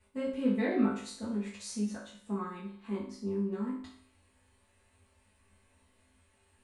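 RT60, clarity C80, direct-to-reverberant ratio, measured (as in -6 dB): 0.55 s, 8.5 dB, -9.0 dB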